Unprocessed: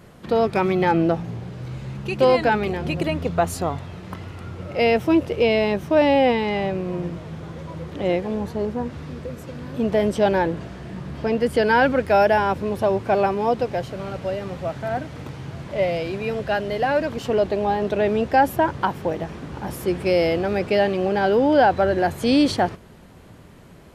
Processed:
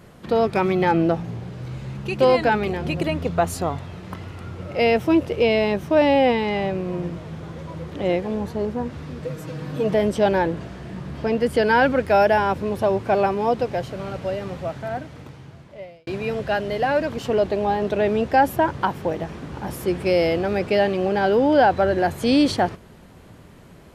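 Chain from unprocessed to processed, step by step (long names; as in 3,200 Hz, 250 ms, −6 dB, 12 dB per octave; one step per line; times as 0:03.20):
0:09.22–0:09.94: comb filter 6.4 ms, depth 92%
0:14.49–0:16.07: fade out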